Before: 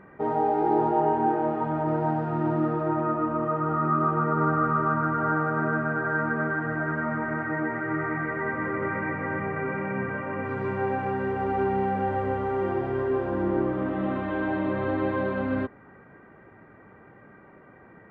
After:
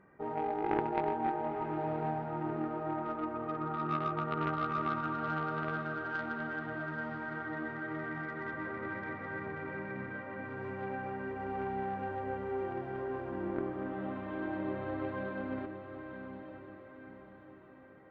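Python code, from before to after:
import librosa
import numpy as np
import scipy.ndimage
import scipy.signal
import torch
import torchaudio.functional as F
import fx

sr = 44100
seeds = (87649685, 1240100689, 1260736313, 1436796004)

y = fx.cheby_harmonics(x, sr, harmonics=(3, 5, 8), levels_db=(-11, -27, -42), full_scale_db=-11.0)
y = fx.echo_diffused(y, sr, ms=943, feedback_pct=46, wet_db=-8.0)
y = y * 10.0 ** (-3.5 / 20.0)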